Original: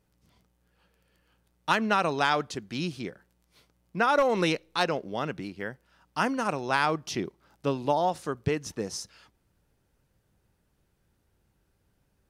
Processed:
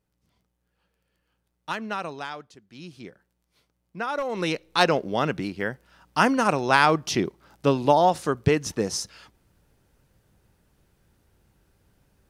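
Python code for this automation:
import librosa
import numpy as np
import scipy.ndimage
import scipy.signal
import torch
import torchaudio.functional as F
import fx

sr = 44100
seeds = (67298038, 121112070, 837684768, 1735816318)

y = fx.gain(x, sr, db=fx.line((2.03, -6.0), (2.6, -16.0), (3.04, -5.5), (4.25, -5.5), (4.83, 7.0)))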